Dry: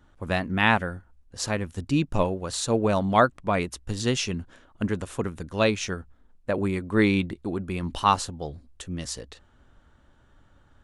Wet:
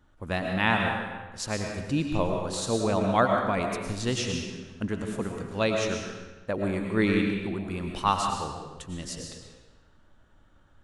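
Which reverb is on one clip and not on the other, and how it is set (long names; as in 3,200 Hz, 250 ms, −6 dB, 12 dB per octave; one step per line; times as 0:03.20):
comb and all-pass reverb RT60 1.2 s, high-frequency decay 0.9×, pre-delay 70 ms, DRR 2 dB
level −4 dB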